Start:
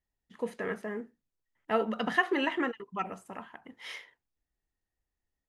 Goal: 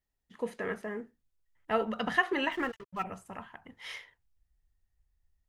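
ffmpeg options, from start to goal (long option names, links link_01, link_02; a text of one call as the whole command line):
ffmpeg -i in.wav -filter_complex "[0:a]asplit=3[link_01][link_02][link_03];[link_01]afade=type=out:start_time=2.51:duration=0.02[link_04];[link_02]aeval=exprs='sgn(val(0))*max(abs(val(0))-0.00266,0)':channel_layout=same,afade=type=in:start_time=2.51:duration=0.02,afade=type=out:start_time=3.02:duration=0.02[link_05];[link_03]afade=type=in:start_time=3.02:duration=0.02[link_06];[link_04][link_05][link_06]amix=inputs=3:normalize=0,asubboost=boost=7:cutoff=110" out.wav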